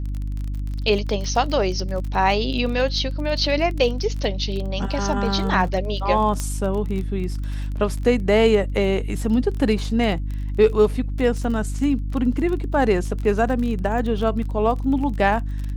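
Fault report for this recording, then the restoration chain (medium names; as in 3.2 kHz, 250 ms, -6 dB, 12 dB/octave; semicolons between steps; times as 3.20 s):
crackle 29 per s -28 dBFS
hum 50 Hz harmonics 6 -26 dBFS
6.40 s: pop -12 dBFS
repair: de-click; de-hum 50 Hz, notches 6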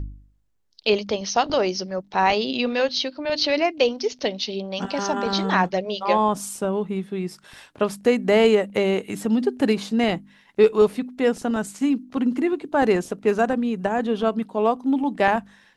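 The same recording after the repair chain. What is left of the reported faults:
6.40 s: pop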